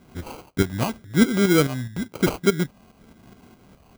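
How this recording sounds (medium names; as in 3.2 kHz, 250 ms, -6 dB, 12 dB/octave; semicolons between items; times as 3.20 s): tremolo saw up 4.8 Hz, depth 60%; phasing stages 8, 0.96 Hz, lowest notch 410–3800 Hz; aliases and images of a low sample rate 1.8 kHz, jitter 0%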